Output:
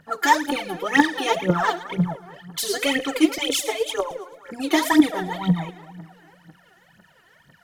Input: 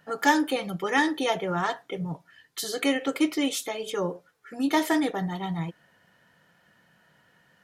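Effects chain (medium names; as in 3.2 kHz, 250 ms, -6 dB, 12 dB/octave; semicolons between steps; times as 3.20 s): 3.38–4.11 s: steep high-pass 430 Hz 72 dB/octave; two-band feedback delay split 1.8 kHz, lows 216 ms, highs 109 ms, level -14.5 dB; phaser 2 Hz, delay 3 ms, feedback 80%; in parallel at +0.5 dB: gain riding 2 s; on the sum: trim -5.5 dB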